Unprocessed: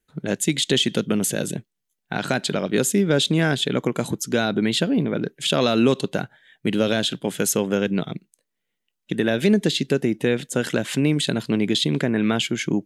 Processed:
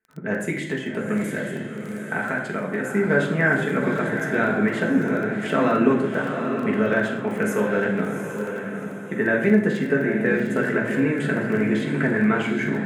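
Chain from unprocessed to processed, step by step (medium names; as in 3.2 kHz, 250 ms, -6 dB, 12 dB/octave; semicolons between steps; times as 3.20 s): 0.61–2.95 s: compression, threshold -21 dBFS, peak gain reduction 7 dB; high-pass 210 Hz 6 dB/octave; resonant high shelf 2.6 kHz -13 dB, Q 3; echo that smears into a reverb 757 ms, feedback 40%, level -6.5 dB; reverberation RT60 0.80 s, pre-delay 4 ms, DRR -2 dB; crackle 17 per s -27 dBFS; trim -4.5 dB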